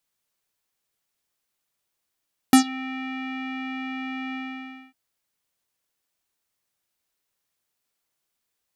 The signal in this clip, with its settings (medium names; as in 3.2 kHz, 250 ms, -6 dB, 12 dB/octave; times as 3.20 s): synth note square C4 12 dB/octave, low-pass 2.4 kHz, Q 4.3, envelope 2.5 oct, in 0.16 s, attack 2 ms, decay 0.10 s, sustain -23 dB, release 0.59 s, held 1.81 s